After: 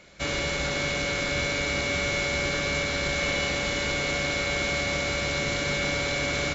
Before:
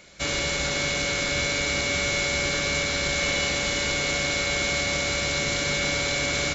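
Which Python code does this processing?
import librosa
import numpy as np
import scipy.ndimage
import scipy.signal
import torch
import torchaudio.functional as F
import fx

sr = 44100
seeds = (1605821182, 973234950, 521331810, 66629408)

y = fx.high_shelf(x, sr, hz=4600.0, db=-9.5)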